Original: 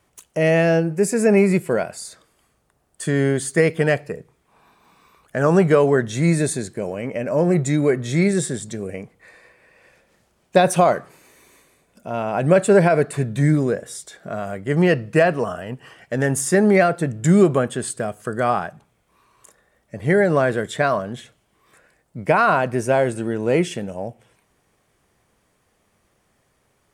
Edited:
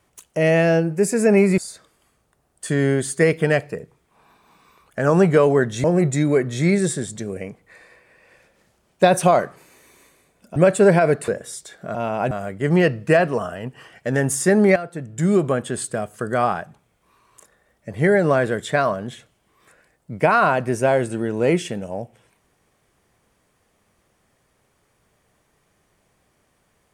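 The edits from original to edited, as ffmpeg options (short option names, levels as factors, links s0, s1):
-filter_complex "[0:a]asplit=8[s0][s1][s2][s3][s4][s5][s6][s7];[s0]atrim=end=1.582[s8];[s1]atrim=start=1.948:end=6.212[s9];[s2]atrim=start=7.368:end=12.092[s10];[s3]atrim=start=12.448:end=13.172[s11];[s4]atrim=start=13.698:end=14.372[s12];[s5]atrim=start=12.088:end=12.452[s13];[s6]atrim=start=14.368:end=16.82,asetpts=PTS-STARTPTS,afade=t=out:st=2.448:d=0.004:c=hsin:silence=0.211349[s14];[s7]atrim=start=16.82,asetpts=PTS-STARTPTS,afade=t=in:d=1.04:silence=0.211349[s15];[s8][s9]acrossfade=d=0.004:c1=hsin:c2=hsin[s16];[s16][s10]acrossfade=d=0.004:c1=hsin:c2=hsin[s17];[s17][s11]acrossfade=d=0.004:c1=hsin:c2=hsin[s18];[s18][s12]acrossfade=d=0.004:c1=hsin:c2=hsin[s19];[s19][s13]acrossfade=d=0.004:c1=hsin:c2=hsin[s20];[s14][s15]concat=n=2:v=0:a=1[s21];[s20][s21]acrossfade=d=0.004:c1=hsin:c2=hsin"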